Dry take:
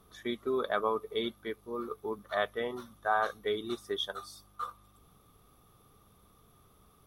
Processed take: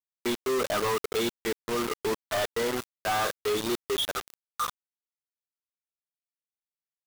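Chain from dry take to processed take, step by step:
log-companded quantiser 2 bits

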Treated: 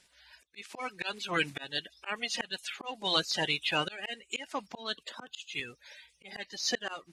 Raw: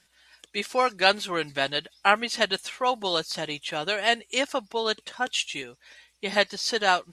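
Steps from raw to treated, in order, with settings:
spectral magnitudes quantised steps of 30 dB
dynamic equaliser 2,500 Hz, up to +5 dB, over −40 dBFS, Q 1.5
volume swells 452 ms
0:05.03–0:05.60: multiband upward and downward expander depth 70%

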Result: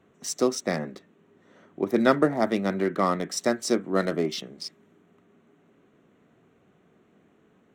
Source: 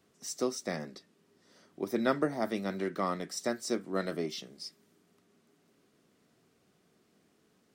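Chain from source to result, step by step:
adaptive Wiener filter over 9 samples
level +8.5 dB

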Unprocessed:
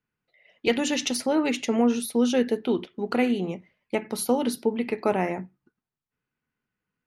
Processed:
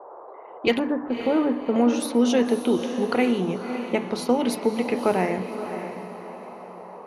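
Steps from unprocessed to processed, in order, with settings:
0:00.79–0:01.76: Chebyshev low-pass with heavy ripple 1,700 Hz, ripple 3 dB
in parallel at +1.5 dB: downward compressor 6 to 1, threshold −34 dBFS, peak gain reduction 16.5 dB
on the sum: noise in a band 390–1,100 Hz −42 dBFS
low-pass that shuts in the quiet parts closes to 960 Hz, open at −18.5 dBFS
on a send: feedback delay with all-pass diffusion 580 ms, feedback 40%, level −9 dB
on the sum: dense smooth reverb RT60 0.7 s, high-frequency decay 0.3×, pre-delay 110 ms, DRR 17.5 dB

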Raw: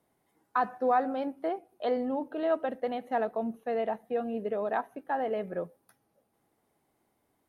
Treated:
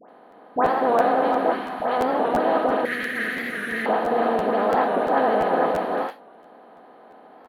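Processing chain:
compressor on every frequency bin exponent 0.2
single-tap delay 360 ms −5 dB
noise gate with hold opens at −14 dBFS
0:01.50–0:01.98: parametric band 710 Hz → 290 Hz −12.5 dB 1.1 octaves
all-pass dispersion highs, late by 92 ms, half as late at 1,400 Hz
pitch vibrato 13 Hz 37 cents
0:02.85–0:03.86: drawn EQ curve 130 Hz 0 dB, 470 Hz −12 dB, 860 Hz −28 dB, 1,900 Hz +14 dB, 2,800 Hz +4 dB, 4,300 Hz +3 dB, 6,500 Hz +12 dB
regular buffer underruns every 0.34 s, samples 512, repeat, from 0:00.30
wow of a warped record 45 rpm, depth 100 cents

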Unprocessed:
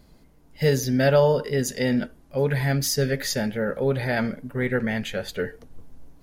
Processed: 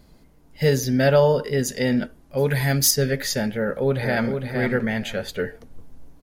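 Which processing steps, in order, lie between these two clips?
0:02.37–0:02.91: high-shelf EQ 4,500 Hz +10 dB
0:03.56–0:04.41: delay throw 460 ms, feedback 20%, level −6 dB
level +1.5 dB

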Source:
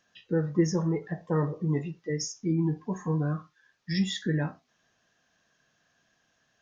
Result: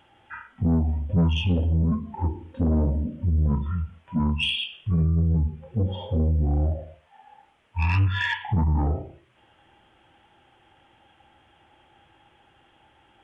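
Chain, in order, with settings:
in parallel at +2 dB: downward compressor, threshold −35 dBFS, peak gain reduction 16 dB
on the sum: soft clipping −20.5 dBFS, distortion −14 dB
wrong playback speed 15 ips tape played at 7.5 ips
level +5 dB

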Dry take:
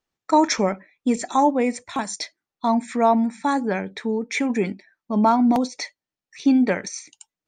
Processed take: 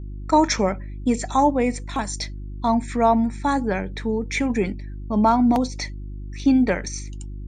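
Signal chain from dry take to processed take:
noise gate with hold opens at −50 dBFS
hum with harmonics 50 Hz, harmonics 7, −33 dBFS −8 dB per octave

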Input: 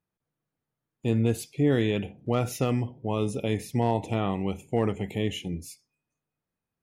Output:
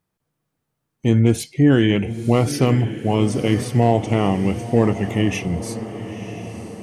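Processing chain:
formants moved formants −2 semitones
feedback delay with all-pass diffusion 987 ms, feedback 55%, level −12 dB
level +9 dB

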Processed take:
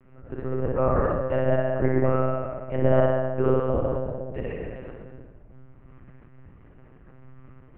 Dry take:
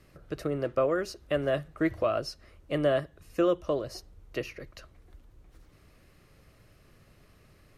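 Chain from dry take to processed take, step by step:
Gaussian smoothing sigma 4.2 samples
on a send: flutter between parallel walls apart 10.3 metres, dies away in 0.96 s
on the sum: rectangular room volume 1,500 cubic metres, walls mixed, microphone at 2.7 metres
one-pitch LPC vocoder at 8 kHz 130 Hz
level −1.5 dB

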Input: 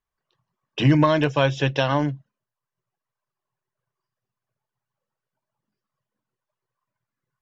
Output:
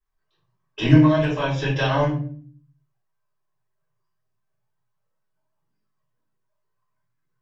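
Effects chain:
0:00.95–0:01.73: downward compressor, threshold −19 dBFS, peak gain reduction 7 dB
rectangular room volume 42 cubic metres, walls mixed, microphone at 3 metres
level −12.5 dB

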